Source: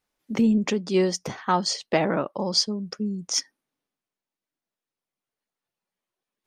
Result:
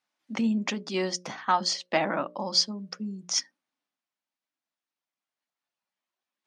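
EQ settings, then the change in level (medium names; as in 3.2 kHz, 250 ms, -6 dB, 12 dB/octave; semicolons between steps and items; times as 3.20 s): band-pass 260–6600 Hz; peaking EQ 430 Hz -11.5 dB 0.54 oct; hum notches 60/120/180/240/300/360/420/480/540/600 Hz; 0.0 dB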